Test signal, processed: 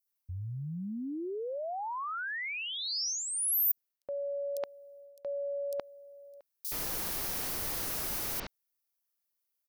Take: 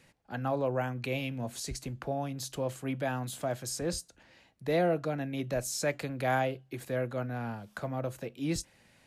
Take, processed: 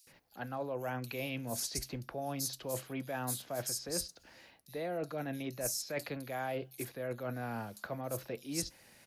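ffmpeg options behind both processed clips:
-filter_complex "[0:a]bass=f=250:g=-5,treble=f=4k:g=3,areverse,acompressor=threshold=-37dB:ratio=6,areverse,acrossover=split=4400[a][b];[a]adelay=70[c];[c][b]amix=inputs=2:normalize=0,aexciter=amount=2.1:drive=1.1:freq=4.4k,volume=2dB"

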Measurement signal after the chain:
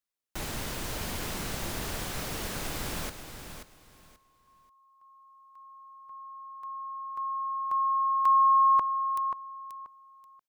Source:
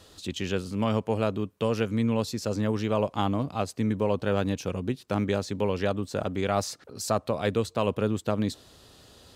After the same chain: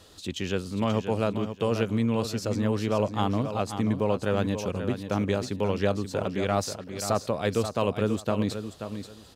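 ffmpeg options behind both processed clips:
-af "aecho=1:1:533|1066|1599:0.355|0.0781|0.0172"

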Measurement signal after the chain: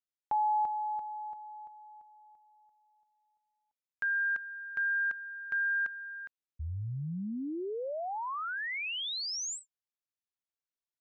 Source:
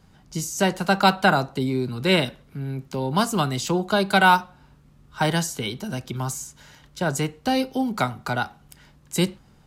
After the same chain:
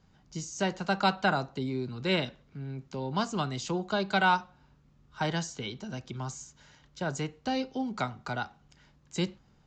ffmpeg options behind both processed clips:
-af "aresample=16000,aresample=44100,volume=-8.5dB"

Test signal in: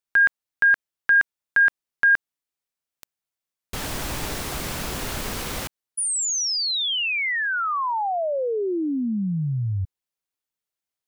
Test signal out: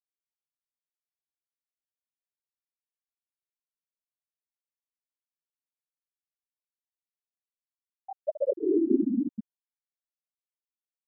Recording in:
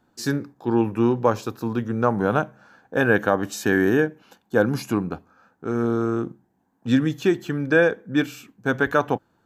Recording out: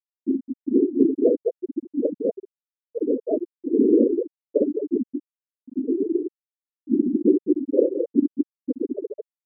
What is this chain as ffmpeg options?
-filter_complex "[0:a]afftfilt=real='hypot(re,im)*cos(2*PI*random(0))':imag='hypot(re,im)*sin(2*PI*random(1))':win_size=512:overlap=0.75,firequalizer=gain_entry='entry(160,0);entry(260,12);entry(1900,-8)':delay=0.05:min_phase=1,asplit=2[a][b];[b]aecho=0:1:53|63|214|231|669:0.133|0.531|0.668|0.119|0.126[c];[a][c]amix=inputs=2:normalize=0,afftfilt=real='re*gte(hypot(re,im),1)':imag='im*gte(hypot(re,im),1)':win_size=1024:overlap=0.75,volume=-3dB"

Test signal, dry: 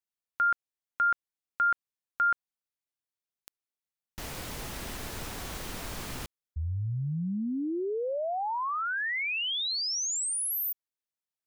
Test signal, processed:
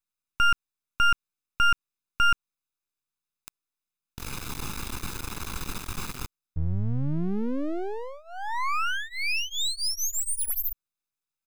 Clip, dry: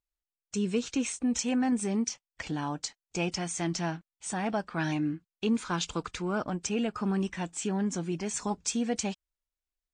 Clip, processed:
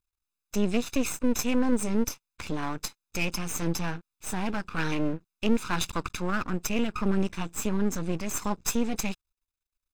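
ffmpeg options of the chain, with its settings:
-af "aecho=1:1:0.8:0.93,aeval=exprs='max(val(0),0)':c=same,volume=3.5dB"

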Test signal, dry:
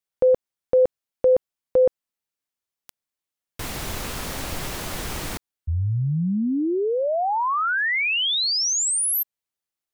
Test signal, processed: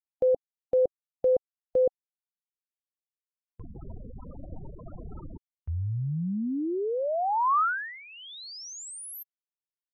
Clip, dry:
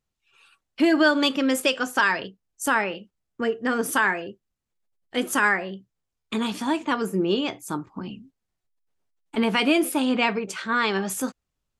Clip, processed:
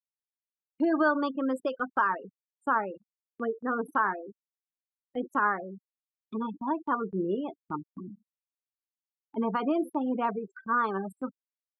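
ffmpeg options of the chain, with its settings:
-af "afftfilt=real='re*gte(hypot(re,im),0.0794)':imag='im*gte(hypot(re,im),0.0794)':win_size=1024:overlap=0.75,highshelf=f=1.7k:t=q:w=3:g=-11,agate=range=-14dB:threshold=-42dB:ratio=16:release=36:detection=rms,volume=-7dB"

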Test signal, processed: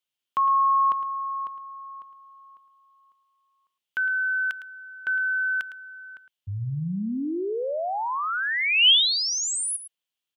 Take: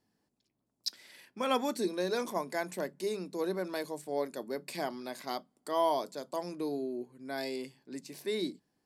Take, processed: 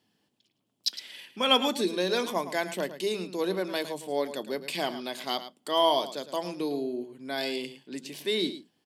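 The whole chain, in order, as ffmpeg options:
-af "highpass=89,equalizer=f=3.1k:t=o:w=0.56:g=13.5,aecho=1:1:109:0.237,volume=4dB"

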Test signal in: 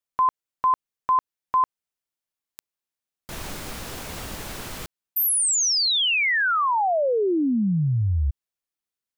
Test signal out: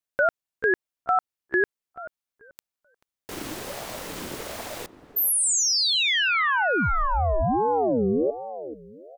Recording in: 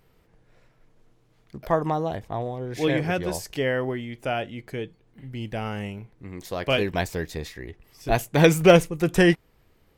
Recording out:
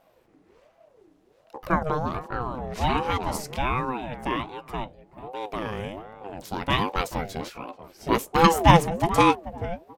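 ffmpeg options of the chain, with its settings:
-filter_complex "[0:a]asplit=2[a][b];[b]adelay=435,lowpass=f=930:p=1,volume=-12.5dB,asplit=2[c][d];[d]adelay=435,lowpass=f=930:p=1,volume=0.3,asplit=2[e][f];[f]adelay=435,lowpass=f=930:p=1,volume=0.3[g];[a][c][e][g]amix=inputs=4:normalize=0,aeval=exprs='val(0)*sin(2*PI*480*n/s+480*0.4/1.3*sin(2*PI*1.3*n/s))':c=same,volume=2dB"

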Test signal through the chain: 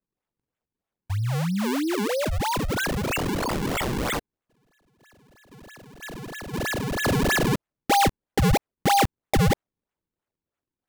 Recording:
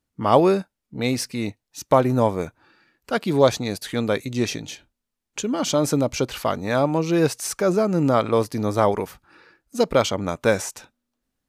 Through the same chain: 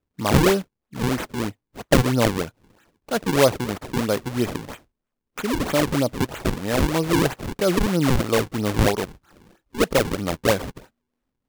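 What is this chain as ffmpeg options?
-filter_complex "[0:a]acrossover=split=860[a][b];[b]asoftclip=type=tanh:threshold=-20.5dB[c];[a][c]amix=inputs=2:normalize=0,acrusher=samples=40:mix=1:aa=0.000001:lfo=1:lforange=64:lforate=3.1"

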